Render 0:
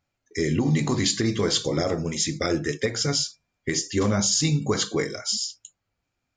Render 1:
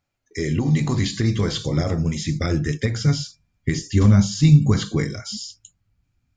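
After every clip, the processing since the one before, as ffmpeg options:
-filter_complex "[0:a]acrossover=split=4000[s0][s1];[s1]acompressor=threshold=0.0224:ratio=4:attack=1:release=60[s2];[s0][s2]amix=inputs=2:normalize=0,asubboost=boost=7.5:cutoff=180"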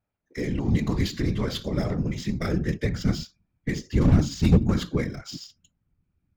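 -af "adynamicsmooth=sensitivity=4.5:basefreq=2500,aeval=exprs='0.422*(abs(mod(val(0)/0.422+3,4)-2)-1)':c=same,afftfilt=real='hypot(re,im)*cos(2*PI*random(0))':imag='hypot(re,im)*sin(2*PI*random(1))':win_size=512:overlap=0.75,volume=1.26"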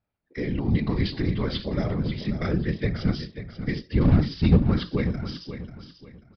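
-filter_complex "[0:a]asplit=2[s0][s1];[s1]aecho=0:1:539|1078|1617:0.282|0.0817|0.0237[s2];[s0][s2]amix=inputs=2:normalize=0,aresample=11025,aresample=44100"

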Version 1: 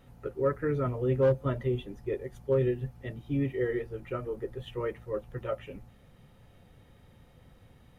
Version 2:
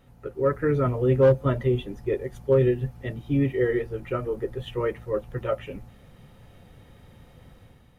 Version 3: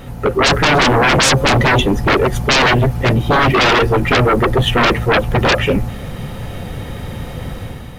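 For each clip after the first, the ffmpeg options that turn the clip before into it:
-af "dynaudnorm=f=170:g=5:m=2.11"
-af "aeval=exprs='0.316*sin(PI/2*8.91*val(0)/0.316)':c=same,volume=1.19"

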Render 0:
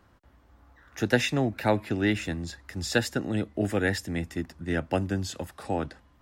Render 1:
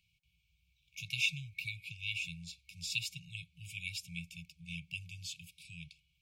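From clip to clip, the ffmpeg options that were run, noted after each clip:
-filter_complex "[0:a]afftfilt=real='re*(1-between(b*sr/4096,180,2200))':imag='im*(1-between(b*sr/4096,180,2200))':win_size=4096:overlap=0.75,acrossover=split=290 2500:gain=0.0631 1 0.224[s0][s1][s2];[s0][s1][s2]amix=inputs=3:normalize=0,volume=1.88"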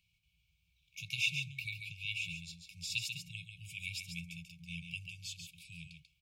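-af "aecho=1:1:140:0.473,volume=0.891"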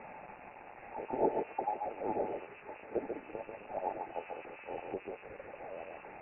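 -af "aeval=exprs='val(0)+0.5*0.00668*sgn(val(0))':c=same,highpass=f=460:w=0.5412,highpass=f=460:w=1.3066,lowpass=f=2600:t=q:w=0.5098,lowpass=f=2600:t=q:w=0.6013,lowpass=f=2600:t=q:w=0.9,lowpass=f=2600:t=q:w=2.563,afreqshift=-3100,volume=2.24"

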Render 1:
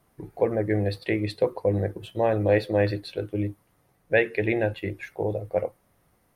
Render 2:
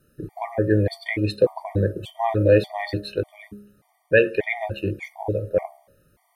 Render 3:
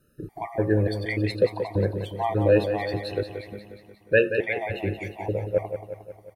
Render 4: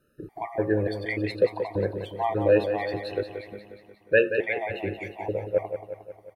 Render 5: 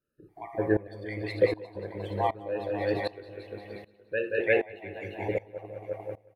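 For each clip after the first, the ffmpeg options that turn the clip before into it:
-af "bandreject=f=68.32:t=h:w=4,bandreject=f=136.64:t=h:w=4,bandreject=f=204.96:t=h:w=4,bandreject=f=273.28:t=h:w=4,bandreject=f=341.6:t=h:w=4,bandreject=f=409.92:t=h:w=4,bandreject=f=478.24:t=h:w=4,bandreject=f=546.56:t=h:w=4,bandreject=f=614.88:t=h:w=4,bandreject=f=683.2:t=h:w=4,bandreject=f=751.52:t=h:w=4,bandreject=f=819.84:t=h:w=4,bandreject=f=888.16:t=h:w=4,bandreject=f=956.48:t=h:w=4,afftfilt=real='re*gt(sin(2*PI*1.7*pts/sr)*(1-2*mod(floor(b*sr/1024/610),2)),0)':imag='im*gt(sin(2*PI*1.7*pts/sr)*(1-2*mod(floor(b*sr/1024/610),2)),0)':win_size=1024:overlap=0.75,volume=2"
-af "aecho=1:1:179|358|537|716|895|1074|1253:0.355|0.206|0.119|0.0692|0.0402|0.0233|0.0135,volume=0.708"
-af "bass=f=250:g=-7,treble=f=4000:g=-7"
-filter_complex "[0:a]asplit=2[s0][s1];[s1]aecho=0:1:43|63|199|349|819:0.106|0.178|0.398|0.531|0.168[s2];[s0][s2]amix=inputs=2:normalize=0,aeval=exprs='val(0)*pow(10,-21*if(lt(mod(-1.3*n/s,1),2*abs(-1.3)/1000),1-mod(-1.3*n/s,1)/(2*abs(-1.3)/1000),(mod(-1.3*n/s,1)-2*abs(-1.3)/1000)/(1-2*abs(-1.3)/1000))/20)':c=same,volume=1.12"

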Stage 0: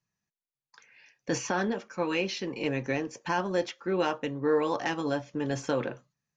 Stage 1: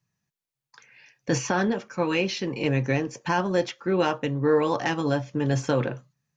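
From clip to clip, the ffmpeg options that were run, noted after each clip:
-af "equalizer=f=130:w=1.8:g=8,volume=1.58"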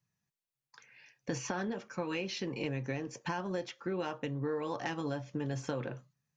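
-af "acompressor=threshold=0.0447:ratio=5,volume=0.531"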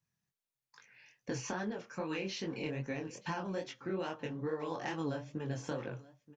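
-af "aecho=1:1:928:0.0944,flanger=delay=18.5:depth=7.4:speed=2.4,volume=1.12"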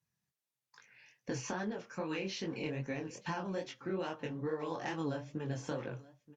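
-ar 44100 -c:a libvorbis -b:a 96k

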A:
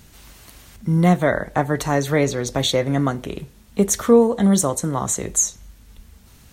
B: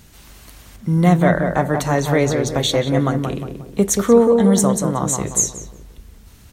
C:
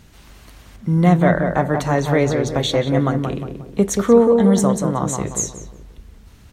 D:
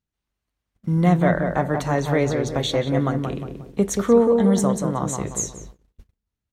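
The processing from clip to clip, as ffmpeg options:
-filter_complex "[0:a]asplit=2[s0][s1];[s1]adelay=180,lowpass=f=1300:p=1,volume=0.631,asplit=2[s2][s3];[s3]adelay=180,lowpass=f=1300:p=1,volume=0.43,asplit=2[s4][s5];[s5]adelay=180,lowpass=f=1300:p=1,volume=0.43,asplit=2[s6][s7];[s7]adelay=180,lowpass=f=1300:p=1,volume=0.43,asplit=2[s8][s9];[s9]adelay=180,lowpass=f=1300:p=1,volume=0.43[s10];[s0][s2][s4][s6][s8][s10]amix=inputs=6:normalize=0,volume=1.12"
-af "highshelf=f=6200:g=-10"
-af "agate=range=0.0178:threshold=0.0158:ratio=16:detection=peak,volume=0.668"

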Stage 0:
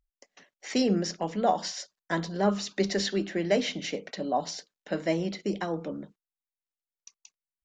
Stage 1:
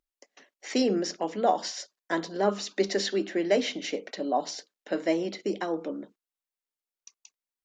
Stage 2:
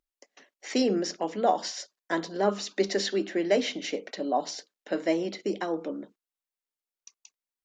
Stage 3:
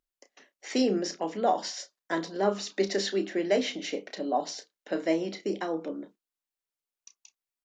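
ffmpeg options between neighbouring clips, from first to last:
-af "lowshelf=f=200:t=q:w=1.5:g=-12"
-af anull
-filter_complex "[0:a]asplit=2[s0][s1];[s1]adelay=31,volume=0.299[s2];[s0][s2]amix=inputs=2:normalize=0,volume=0.841"

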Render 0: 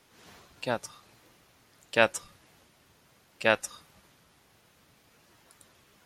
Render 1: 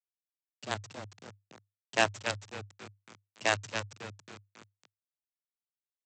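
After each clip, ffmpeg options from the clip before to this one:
-filter_complex "[0:a]asplit=7[s0][s1][s2][s3][s4][s5][s6];[s1]adelay=274,afreqshift=-99,volume=0.473[s7];[s2]adelay=548,afreqshift=-198,volume=0.226[s8];[s3]adelay=822,afreqshift=-297,volume=0.108[s9];[s4]adelay=1096,afreqshift=-396,volume=0.0525[s10];[s5]adelay=1370,afreqshift=-495,volume=0.0251[s11];[s6]adelay=1644,afreqshift=-594,volume=0.012[s12];[s0][s7][s8][s9][s10][s11][s12]amix=inputs=7:normalize=0,aresample=16000,acrusher=bits=4:dc=4:mix=0:aa=0.000001,aresample=44100,afreqshift=100,volume=0.596"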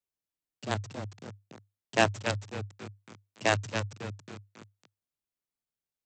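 -af "lowshelf=f=480:g=9.5"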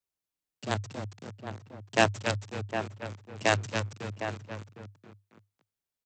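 -filter_complex "[0:a]asplit=2[s0][s1];[s1]adelay=758,volume=0.398,highshelf=f=4000:g=-17.1[s2];[s0][s2]amix=inputs=2:normalize=0,volume=1.12"

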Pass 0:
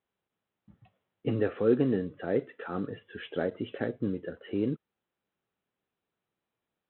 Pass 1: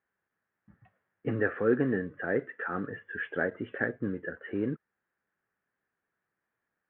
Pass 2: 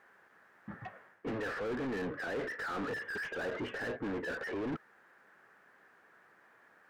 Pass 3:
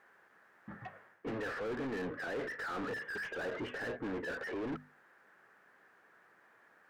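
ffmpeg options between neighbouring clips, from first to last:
-af "lowpass=f=1700:t=q:w=4.8,volume=0.794"
-filter_complex "[0:a]areverse,acompressor=threshold=0.0141:ratio=6,areverse,asplit=2[s0][s1];[s1]highpass=f=720:p=1,volume=44.7,asoftclip=type=tanh:threshold=0.0335[s2];[s0][s2]amix=inputs=2:normalize=0,lowpass=f=1400:p=1,volume=0.501"
-af "bandreject=f=50:t=h:w=6,bandreject=f=100:t=h:w=6,bandreject=f=150:t=h:w=6,bandreject=f=200:t=h:w=6,bandreject=f=250:t=h:w=6,volume=0.841"

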